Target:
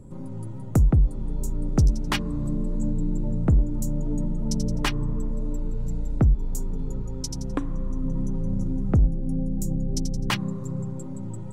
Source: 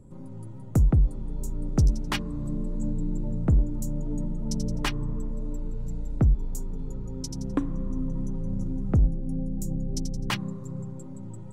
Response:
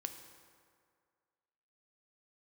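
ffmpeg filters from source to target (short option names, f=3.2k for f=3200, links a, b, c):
-filter_complex "[0:a]asplit=2[a][b];[b]acompressor=threshold=-30dB:ratio=6,volume=-1dB[c];[a][c]amix=inputs=2:normalize=0,asettb=1/sr,asplit=3[d][e][f];[d]atrim=end=7.024[g];[e]atrim=start=7.02:end=8.04,asetpts=PTS-STARTPTS,afade=t=in:d=0.004:c=qsin,afade=t=out:st=1.016:d=0.004:c=qsin,equalizer=f=230:w=0.73:g=-5.5[h];[f]atrim=start=8.036[i];[g][h]acrossfade=d=0.004:c1=hsin:c2=qsin[j];[j][i]acrossfade=d=0.004:c1=qsin:c2=hsin"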